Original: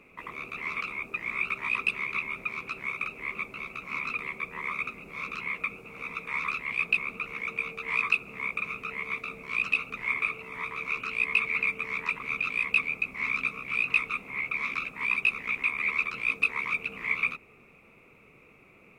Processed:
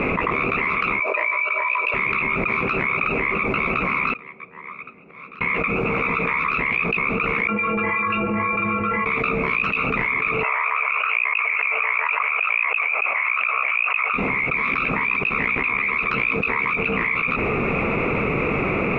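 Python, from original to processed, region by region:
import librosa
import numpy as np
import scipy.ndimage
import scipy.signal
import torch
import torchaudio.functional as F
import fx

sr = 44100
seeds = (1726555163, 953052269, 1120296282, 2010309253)

y = fx.chain(x, sr, fx.highpass(hz=430.0, slope=24),
    fx.small_body(hz=(610.0, 1000.0, 2300.0), ring_ms=65, db=17), at=(1.0, 1.94))
y = fx.chain(y, sr, fx.highpass(hz=110.0, slope=12),
    fx.air_absorb(metres=57.0),
    fx.gate_flip(shuts_db=-38.0, range_db=-40), at=(4.13, 5.41))
y = fx.chain(y, sr, fx.lowpass(hz=1600.0, slope=12),
    fx.stiff_resonator(f0_hz=100.0, decay_s=0.54, stiffness=0.03), at=(7.47, 9.06))
y = fx.chain(y, sr, fx.cheby1_bandpass(low_hz=620.0, high_hz=2800.0, order=3),
    fx.over_compress(threshold_db=-36.0, ratio=-1.0), at=(10.43, 14.14))
y = scipy.signal.sosfilt(scipy.signal.butter(2, 2000.0, 'lowpass', fs=sr, output='sos'), y)
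y = fx.env_flatten(y, sr, amount_pct=100)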